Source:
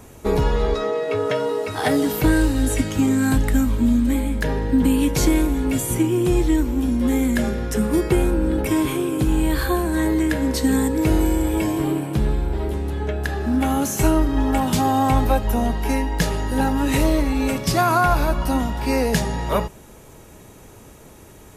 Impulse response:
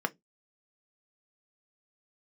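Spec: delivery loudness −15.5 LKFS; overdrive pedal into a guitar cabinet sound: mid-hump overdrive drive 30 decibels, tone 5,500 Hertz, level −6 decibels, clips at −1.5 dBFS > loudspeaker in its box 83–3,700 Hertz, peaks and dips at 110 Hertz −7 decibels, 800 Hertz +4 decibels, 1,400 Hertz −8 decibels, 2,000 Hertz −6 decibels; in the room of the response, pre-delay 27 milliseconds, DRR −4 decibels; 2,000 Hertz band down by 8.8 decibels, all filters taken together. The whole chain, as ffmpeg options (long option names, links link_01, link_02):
-filter_complex "[0:a]equalizer=frequency=2000:width_type=o:gain=-5,asplit=2[link_01][link_02];[1:a]atrim=start_sample=2205,adelay=27[link_03];[link_02][link_03]afir=irnorm=-1:irlink=0,volume=-3dB[link_04];[link_01][link_04]amix=inputs=2:normalize=0,asplit=2[link_05][link_06];[link_06]highpass=frequency=720:poles=1,volume=30dB,asoftclip=type=tanh:threshold=-1.5dB[link_07];[link_05][link_07]amix=inputs=2:normalize=0,lowpass=frequency=5500:poles=1,volume=-6dB,highpass=83,equalizer=frequency=110:width_type=q:width=4:gain=-7,equalizer=frequency=800:width_type=q:width=4:gain=4,equalizer=frequency=1400:width_type=q:width=4:gain=-8,equalizer=frequency=2000:width_type=q:width=4:gain=-6,lowpass=frequency=3700:width=0.5412,lowpass=frequency=3700:width=1.3066,volume=-6.5dB"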